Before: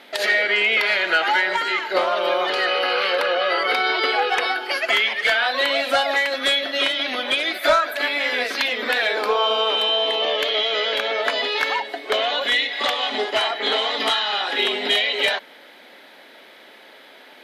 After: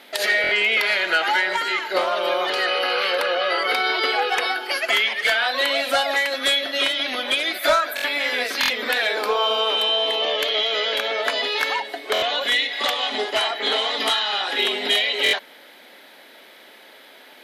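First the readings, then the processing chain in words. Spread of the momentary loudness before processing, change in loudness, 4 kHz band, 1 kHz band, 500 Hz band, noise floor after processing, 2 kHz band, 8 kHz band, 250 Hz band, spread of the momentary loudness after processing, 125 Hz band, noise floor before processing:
4 LU, -0.5 dB, 0.0 dB, -1.5 dB, -1.5 dB, -47 dBFS, -1.0 dB, +4.0 dB, -1.5 dB, 4 LU, no reading, -47 dBFS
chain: treble shelf 7.2 kHz +10 dB; buffer glitch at 0.42/7.95/8.61/12.13/15.24 s, samples 1024, times 3; trim -1.5 dB

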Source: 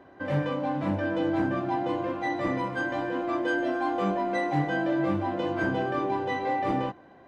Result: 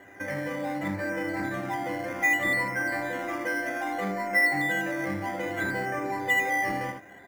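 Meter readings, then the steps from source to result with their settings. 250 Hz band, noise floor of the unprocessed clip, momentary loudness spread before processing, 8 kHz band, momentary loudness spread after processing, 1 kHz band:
-5.0 dB, -52 dBFS, 3 LU, no reading, 9 LU, -2.0 dB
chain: band-stop 1.1 kHz, Q 8.9; level rider gain up to 5 dB; on a send: early reflections 10 ms -6.5 dB, 78 ms -6 dB; on the sum: compression 2:1, threshold -35 dBFS, peak gain reduction 11 dB; resonant low-pass 2 kHz, resonance Q 8.2; in parallel at -9.5 dB: decimation with a swept rate 9×, swing 60% 0.63 Hz; on the sum: trim -4.5 dB

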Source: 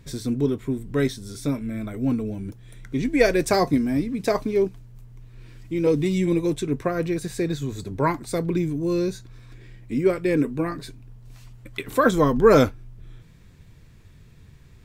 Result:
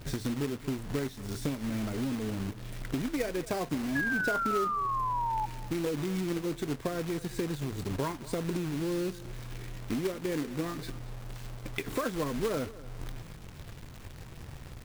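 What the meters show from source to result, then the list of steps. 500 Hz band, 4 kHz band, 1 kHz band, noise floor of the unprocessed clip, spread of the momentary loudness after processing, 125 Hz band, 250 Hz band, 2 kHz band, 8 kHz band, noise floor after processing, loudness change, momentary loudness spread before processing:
-12.5 dB, -5.5 dB, -4.5 dB, -50 dBFS, 15 LU, -8.0 dB, -9.5 dB, -4.0 dB, -5.5 dB, -47 dBFS, -10.0 dB, 12 LU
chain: treble shelf 3.7 kHz -11.5 dB; compression 6:1, threshold -34 dBFS, peak gain reduction 22 dB; companded quantiser 4-bit; painted sound fall, 3.95–5.46 s, 850–1700 Hz -34 dBFS; on a send: delay 230 ms -18 dB; on the sum: trim +3 dB

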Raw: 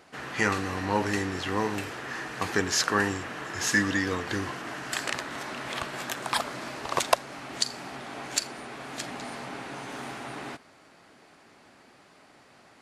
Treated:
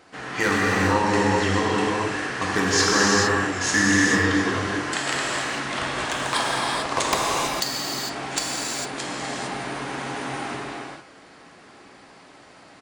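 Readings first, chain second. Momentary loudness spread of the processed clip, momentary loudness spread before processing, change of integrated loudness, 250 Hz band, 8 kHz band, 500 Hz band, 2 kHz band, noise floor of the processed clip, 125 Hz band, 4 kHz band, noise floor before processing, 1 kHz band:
12 LU, 13 LU, +7.5 dB, +8.0 dB, +7.0 dB, +7.5 dB, +7.5 dB, -49 dBFS, +8.0 dB, +7.0 dB, -57 dBFS, +7.5 dB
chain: resampled via 22.05 kHz; wavefolder -13 dBFS; gated-style reverb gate 480 ms flat, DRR -5 dB; trim +1.5 dB

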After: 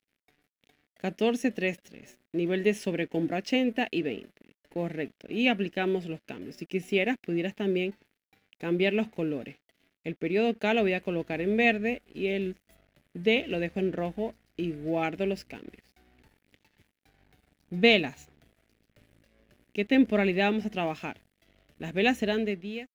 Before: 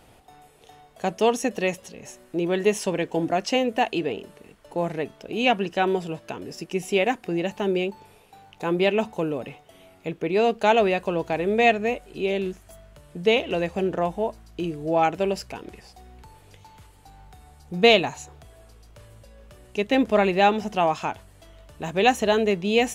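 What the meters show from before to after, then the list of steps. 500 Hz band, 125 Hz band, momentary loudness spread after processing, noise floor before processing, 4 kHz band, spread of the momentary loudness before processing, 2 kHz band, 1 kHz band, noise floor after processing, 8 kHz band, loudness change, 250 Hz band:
-6.5 dB, -3.0 dB, 15 LU, -54 dBFS, -5.0 dB, 15 LU, -3.0 dB, -11.5 dB, -85 dBFS, under -10 dB, -5.0 dB, -1.5 dB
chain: fade out at the end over 0.75 s; crossover distortion -47 dBFS; graphic EQ 250/1000/2000/8000 Hz +7/-11/+7/-7 dB; trim -5.5 dB

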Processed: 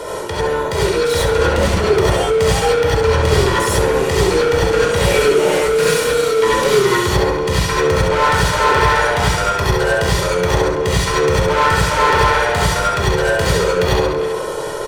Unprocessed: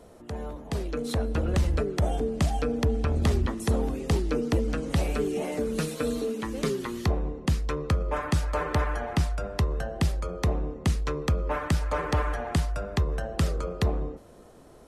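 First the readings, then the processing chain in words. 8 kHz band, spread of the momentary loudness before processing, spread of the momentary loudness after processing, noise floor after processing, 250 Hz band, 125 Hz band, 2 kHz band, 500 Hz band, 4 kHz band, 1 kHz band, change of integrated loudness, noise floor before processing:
+18.0 dB, 4 LU, 4 LU, -22 dBFS, +7.5 dB, +8.0 dB, +20.0 dB, +17.5 dB, +19.0 dB, +18.5 dB, +13.5 dB, -51 dBFS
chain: comb 2.1 ms, depth 74%; on a send: flutter echo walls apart 11.6 m, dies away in 0.56 s; on the sum: sine folder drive 5 dB, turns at -9.5 dBFS; speakerphone echo 330 ms, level -16 dB; overdrive pedal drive 21 dB, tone 6.1 kHz, clips at -9 dBFS; gated-style reverb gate 120 ms rising, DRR -6 dB; reverse; upward compressor, threshold -10 dBFS; reverse; trim -5.5 dB

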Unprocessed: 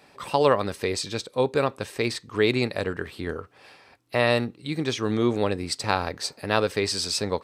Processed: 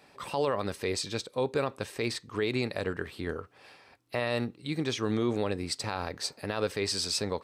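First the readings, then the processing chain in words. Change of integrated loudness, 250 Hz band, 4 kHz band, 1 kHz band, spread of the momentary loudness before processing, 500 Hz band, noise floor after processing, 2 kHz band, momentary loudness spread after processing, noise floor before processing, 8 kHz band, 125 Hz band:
-6.5 dB, -5.5 dB, -5.0 dB, -8.5 dB, 9 LU, -7.0 dB, -60 dBFS, -7.0 dB, 7 LU, -56 dBFS, -3.5 dB, -5.5 dB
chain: peak limiter -14.5 dBFS, peak gain reduction 10.5 dB; trim -3.5 dB

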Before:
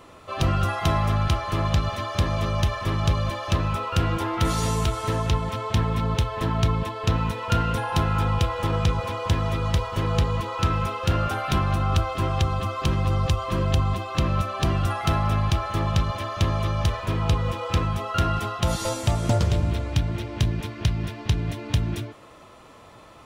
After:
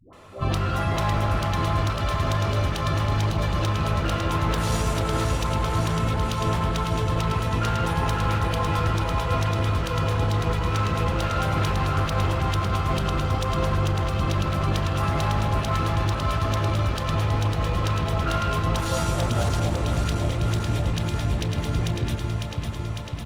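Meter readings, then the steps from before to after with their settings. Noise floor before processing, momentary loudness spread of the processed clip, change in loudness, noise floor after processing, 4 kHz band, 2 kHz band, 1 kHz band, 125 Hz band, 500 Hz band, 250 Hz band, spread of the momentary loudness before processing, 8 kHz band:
-48 dBFS, 2 LU, 0.0 dB, -29 dBFS, 0.0 dB, +2.0 dB, +1.0 dB, 0.0 dB, +1.0 dB, 0.0 dB, 3 LU, +0.5 dB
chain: de-hum 68.66 Hz, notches 4; on a send: echo whose repeats swap between lows and highs 276 ms, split 840 Hz, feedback 84%, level -3.5 dB; on the sum: overload inside the chain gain 20 dB; phase dispersion highs, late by 131 ms, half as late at 520 Hz; speakerphone echo 160 ms, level -11 dB; Opus 48 kbps 48 kHz

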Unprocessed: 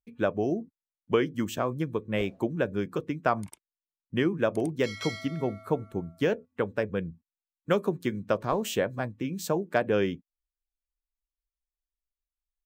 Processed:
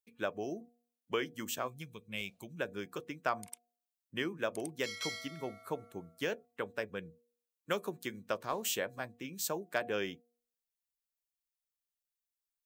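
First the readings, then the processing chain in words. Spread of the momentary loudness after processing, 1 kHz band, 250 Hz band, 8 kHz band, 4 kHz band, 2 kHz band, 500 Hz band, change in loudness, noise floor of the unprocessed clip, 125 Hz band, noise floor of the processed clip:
9 LU, -7.5 dB, -13.0 dB, +1.5 dB, -1.5 dB, -4.5 dB, -10.5 dB, -9.0 dB, under -85 dBFS, -15.5 dB, under -85 dBFS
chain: tilt EQ +3 dB/octave; de-hum 238.3 Hz, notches 3; time-frequency box 1.68–2.59 s, 230–2100 Hz -11 dB; trim -7 dB

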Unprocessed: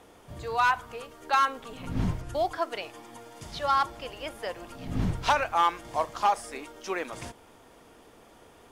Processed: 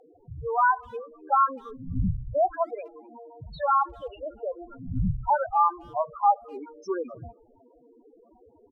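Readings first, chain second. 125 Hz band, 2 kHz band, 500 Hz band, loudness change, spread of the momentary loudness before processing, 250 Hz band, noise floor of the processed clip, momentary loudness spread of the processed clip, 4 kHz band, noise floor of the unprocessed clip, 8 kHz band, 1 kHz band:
+2.0 dB, -3.5 dB, +3.0 dB, +2.0 dB, 17 LU, +0.5 dB, -59 dBFS, 17 LU, under -15 dB, -55 dBFS, under -20 dB, +2.5 dB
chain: loudest bins only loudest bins 4; low-pass that closes with the level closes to 1.5 kHz, closed at -25 dBFS; speakerphone echo 250 ms, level -28 dB; trim +5 dB

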